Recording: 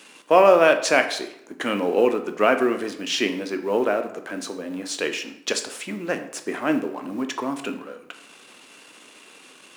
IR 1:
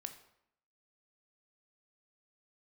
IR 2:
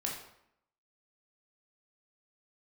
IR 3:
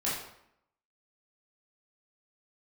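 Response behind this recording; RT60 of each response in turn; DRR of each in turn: 1; 0.75, 0.75, 0.75 seconds; 7.0, −2.0, −8.0 decibels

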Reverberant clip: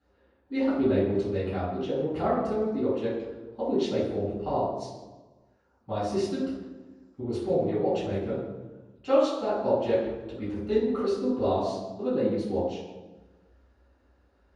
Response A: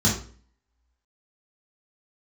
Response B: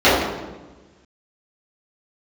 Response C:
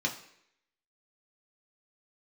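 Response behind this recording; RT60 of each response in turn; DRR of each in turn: B; 0.45 s, 1.2 s, non-exponential decay; −6.0, −14.0, −0.5 decibels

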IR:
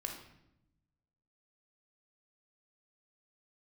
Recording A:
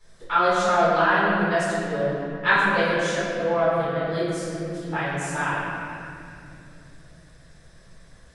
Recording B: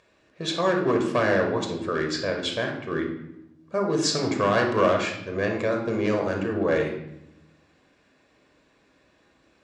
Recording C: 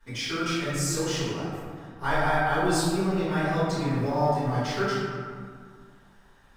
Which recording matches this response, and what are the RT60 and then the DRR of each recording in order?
B; 2.6, 0.85, 2.0 seconds; −12.5, 2.0, −17.0 decibels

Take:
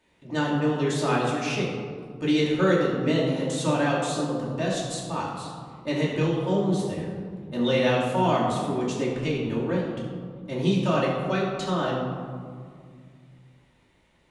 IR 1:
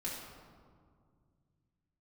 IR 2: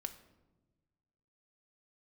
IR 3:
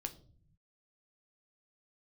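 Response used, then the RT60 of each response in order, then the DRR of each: 1; 2.1, 1.2, 0.50 seconds; −6.0, 7.0, 6.0 decibels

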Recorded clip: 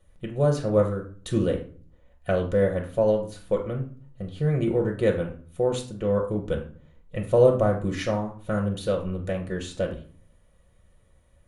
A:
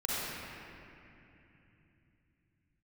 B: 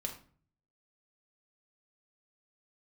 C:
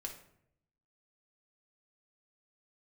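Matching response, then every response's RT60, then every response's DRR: B; 2.9, 0.45, 0.70 seconds; −8.5, 1.5, 1.0 decibels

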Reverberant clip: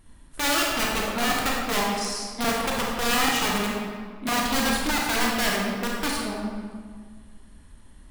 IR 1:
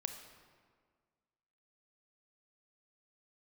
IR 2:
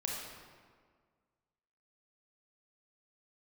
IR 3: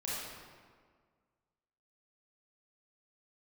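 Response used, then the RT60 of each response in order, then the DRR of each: 2; 1.7, 1.7, 1.7 seconds; 6.0, −2.5, −8.0 decibels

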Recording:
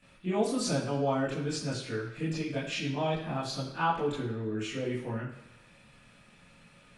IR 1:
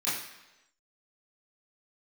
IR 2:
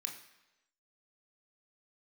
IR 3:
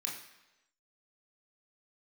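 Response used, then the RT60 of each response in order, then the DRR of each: 1; 1.0, 1.0, 1.0 seconds; −12.0, 1.5, −2.5 decibels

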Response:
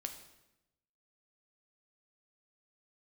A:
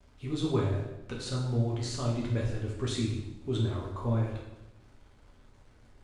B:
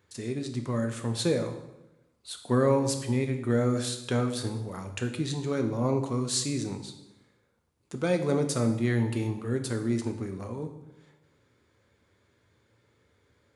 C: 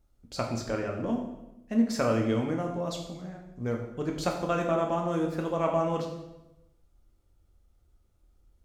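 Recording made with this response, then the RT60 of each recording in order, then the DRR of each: B; 0.90, 0.90, 0.95 seconds; −3.5, 5.5, 1.0 decibels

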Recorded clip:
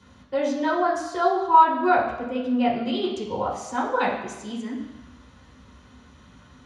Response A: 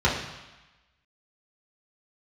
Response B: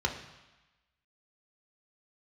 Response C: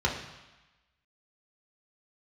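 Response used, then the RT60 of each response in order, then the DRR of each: A; 1.1, 1.1, 1.1 seconds; −7.0, 1.5, −2.5 decibels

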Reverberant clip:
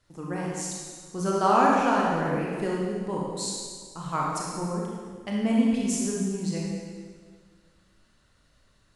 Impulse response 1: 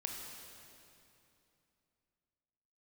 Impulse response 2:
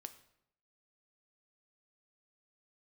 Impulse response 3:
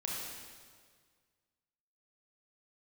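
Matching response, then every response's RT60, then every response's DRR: 3; 2.8, 0.75, 1.8 seconds; 0.5, 9.0, −4.0 decibels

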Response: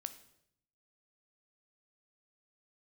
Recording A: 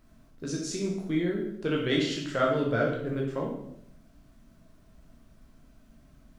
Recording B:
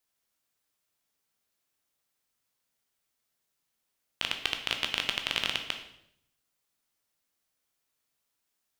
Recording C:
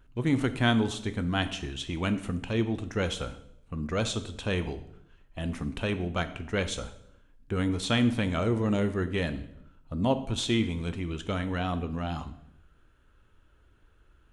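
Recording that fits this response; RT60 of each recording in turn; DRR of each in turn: C; 0.70, 0.70, 0.70 seconds; −2.0, 4.5, 10.0 decibels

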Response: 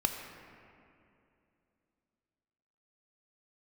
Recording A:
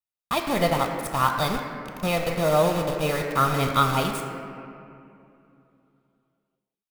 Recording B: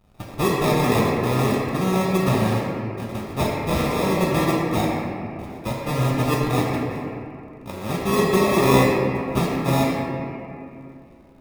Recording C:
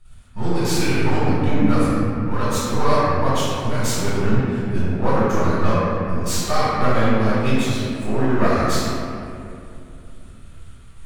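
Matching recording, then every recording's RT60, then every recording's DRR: A; 2.7, 2.7, 2.6 seconds; 3.5, −3.5, −12.5 decibels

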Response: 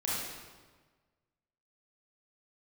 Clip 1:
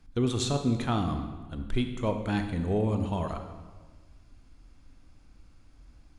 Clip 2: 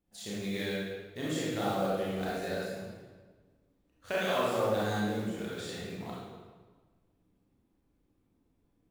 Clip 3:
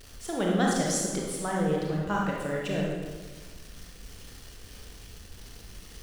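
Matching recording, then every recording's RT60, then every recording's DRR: 2; 1.4, 1.4, 1.4 seconds; 6.0, −7.5, −2.5 decibels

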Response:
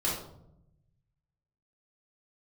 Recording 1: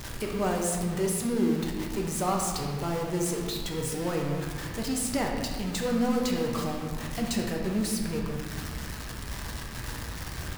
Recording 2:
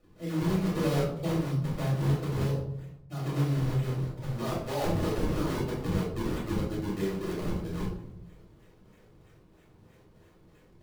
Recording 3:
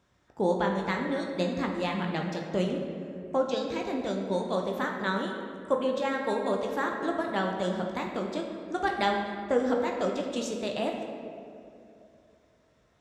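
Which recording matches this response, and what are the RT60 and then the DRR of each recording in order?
2; 1.8, 0.75, 2.7 seconds; −0.5, −7.5, 1.0 decibels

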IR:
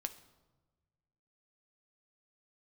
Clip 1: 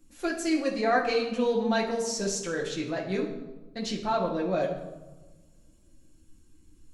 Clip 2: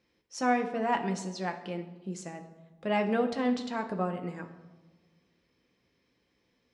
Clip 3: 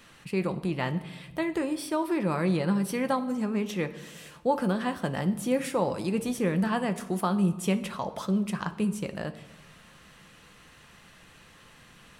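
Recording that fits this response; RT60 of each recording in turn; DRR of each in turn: 3; 1.2, 1.2, 1.2 seconds; −2.0, 3.5, 8.0 decibels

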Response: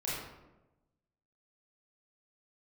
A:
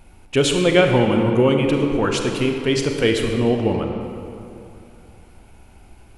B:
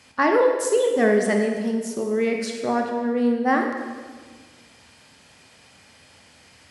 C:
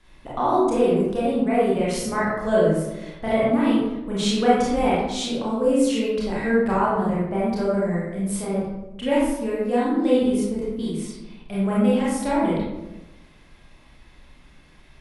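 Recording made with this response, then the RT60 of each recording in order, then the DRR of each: C; 2.7, 1.6, 1.0 seconds; 3.0, 2.5, −8.0 decibels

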